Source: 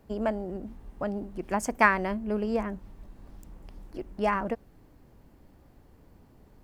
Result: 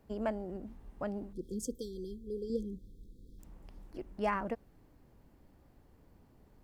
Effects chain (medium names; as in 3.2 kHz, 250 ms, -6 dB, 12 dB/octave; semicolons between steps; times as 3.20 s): 1.33–3.40 s: spectral selection erased 520–3200 Hz; 1.75–2.50 s: peaking EQ 220 Hz -9.5 dB 0.69 oct; trim -6 dB